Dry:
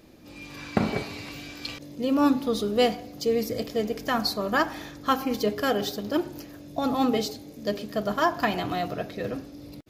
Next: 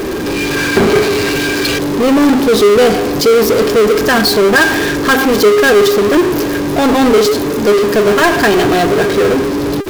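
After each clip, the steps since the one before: small resonant body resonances 400/1600 Hz, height 17 dB, ringing for 55 ms; power-law curve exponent 0.35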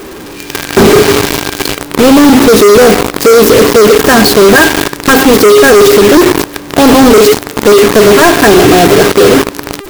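bell 2900 Hz -4 dB 2.8 oct; companded quantiser 2-bit; gain -1 dB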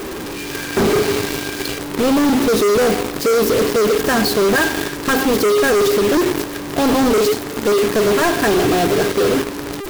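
soft clip -11 dBFS, distortion -16 dB; gain -1.5 dB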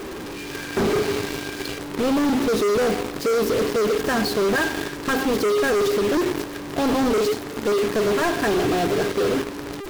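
high shelf 7900 Hz -6.5 dB; gain -5.5 dB

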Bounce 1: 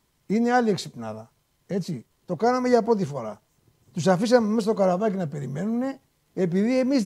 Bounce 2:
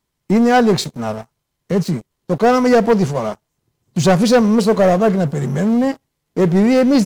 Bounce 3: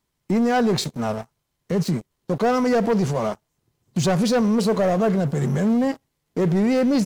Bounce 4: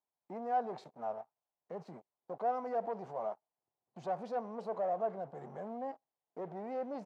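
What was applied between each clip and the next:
sample leveller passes 3
limiter -13 dBFS, peak gain reduction 8 dB; gain -1.5 dB
band-pass 750 Hz, Q 3.1; gain -8.5 dB

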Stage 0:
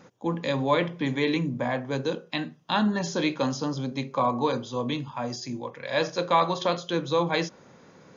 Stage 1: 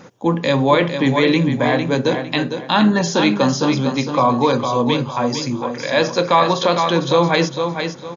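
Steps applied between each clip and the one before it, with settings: feedback echo 0.455 s, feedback 30%, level -8 dB; in parallel at +2 dB: limiter -17 dBFS, peak gain reduction 8 dB; on the sum: gain +3.5 dB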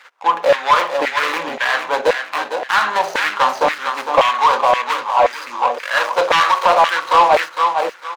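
median filter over 25 samples; LFO high-pass saw down 1.9 Hz 610–1900 Hz; overdrive pedal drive 15 dB, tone 4600 Hz, clips at -1.5 dBFS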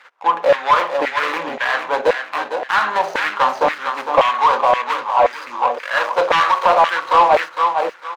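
high shelf 3600 Hz -8.5 dB

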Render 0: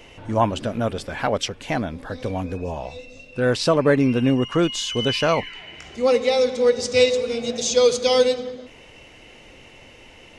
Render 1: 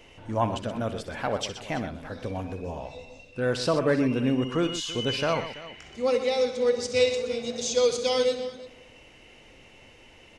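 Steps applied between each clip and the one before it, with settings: tapped delay 62/125/333 ms -13/-11.5/-17.5 dB; gain -6.5 dB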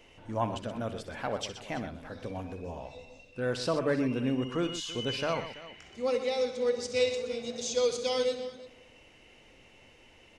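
notches 50/100/150 Hz; gain -5 dB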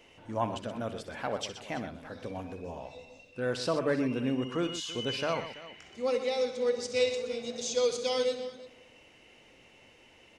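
low shelf 61 Hz -12 dB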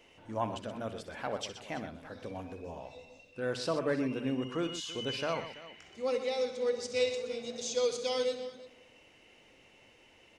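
notches 60/120/180/240 Hz; gain -2.5 dB

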